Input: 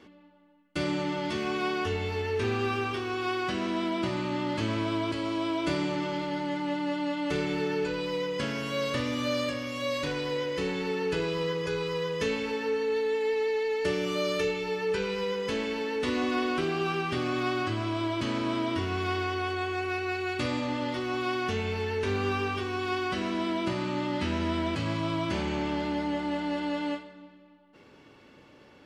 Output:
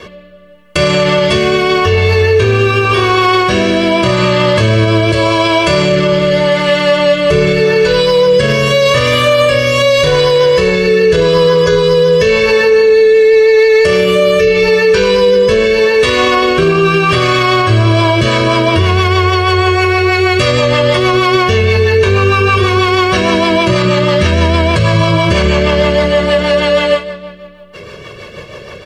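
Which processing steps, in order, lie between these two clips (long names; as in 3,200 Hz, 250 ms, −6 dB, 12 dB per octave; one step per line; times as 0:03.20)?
comb filter 1.8 ms, depth 100%
rotating-speaker cabinet horn 0.85 Hz, later 6.3 Hz, at 0:17.69
boost into a limiter +25.5 dB
level −1 dB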